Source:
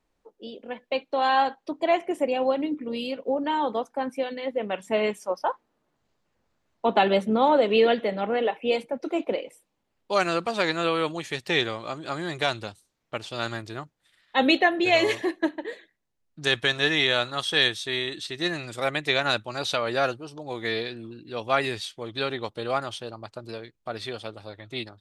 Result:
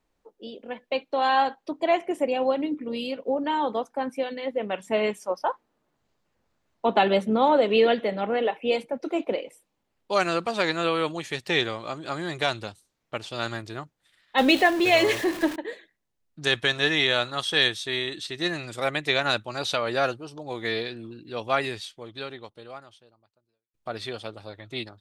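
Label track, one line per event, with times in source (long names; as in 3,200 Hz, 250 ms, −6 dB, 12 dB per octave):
14.380000	15.560000	converter with a step at zero of −29.5 dBFS
21.420000	23.740000	fade out quadratic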